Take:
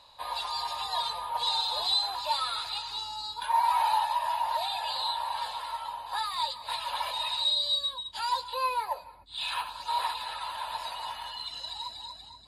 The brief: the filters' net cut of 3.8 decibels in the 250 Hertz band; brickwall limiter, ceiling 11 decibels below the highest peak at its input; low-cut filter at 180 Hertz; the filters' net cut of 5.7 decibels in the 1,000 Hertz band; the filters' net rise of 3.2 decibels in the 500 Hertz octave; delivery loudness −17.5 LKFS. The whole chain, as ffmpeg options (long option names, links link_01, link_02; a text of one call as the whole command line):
ffmpeg -i in.wav -af "highpass=180,equalizer=frequency=250:width_type=o:gain=-6.5,equalizer=frequency=500:width_type=o:gain=8,equalizer=frequency=1000:width_type=o:gain=-8,volume=18dB,alimiter=limit=-9.5dB:level=0:latency=1" out.wav